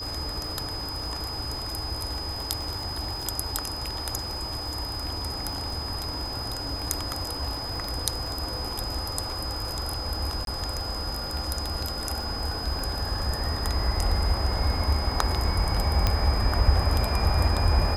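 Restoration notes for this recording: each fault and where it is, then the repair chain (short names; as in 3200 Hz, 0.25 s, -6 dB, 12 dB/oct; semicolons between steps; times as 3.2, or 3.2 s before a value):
crackle 20/s -34 dBFS
tone 5000 Hz -33 dBFS
10.45–10.47 gap 22 ms
16.07 pop -8 dBFS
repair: de-click; notch 5000 Hz, Q 30; interpolate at 10.45, 22 ms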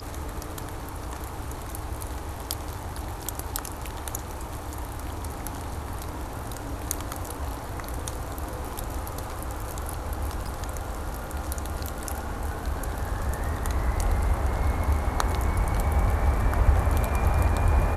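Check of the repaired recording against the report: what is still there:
none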